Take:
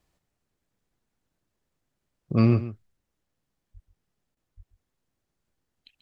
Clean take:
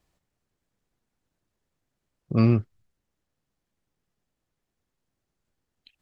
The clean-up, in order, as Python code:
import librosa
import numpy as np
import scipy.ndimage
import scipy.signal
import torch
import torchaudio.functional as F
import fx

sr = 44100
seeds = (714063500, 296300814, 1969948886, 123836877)

y = fx.fix_deplosive(x, sr, at_s=(3.73, 4.56))
y = fx.fix_interpolate(y, sr, at_s=(4.35,), length_ms=17.0)
y = fx.fix_echo_inverse(y, sr, delay_ms=136, level_db=-14.0)